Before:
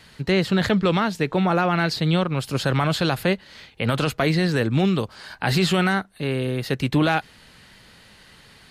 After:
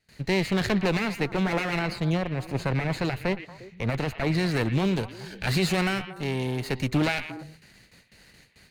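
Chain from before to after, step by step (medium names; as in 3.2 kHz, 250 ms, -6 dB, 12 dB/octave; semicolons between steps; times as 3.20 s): comb filter that takes the minimum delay 0.45 ms; gate with hold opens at -40 dBFS; 1.79–4.35 s: treble shelf 2.9 kHz -10 dB; repeats whose band climbs or falls 117 ms, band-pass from 2.5 kHz, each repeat -1.4 oct, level -8.5 dB; trim -3.5 dB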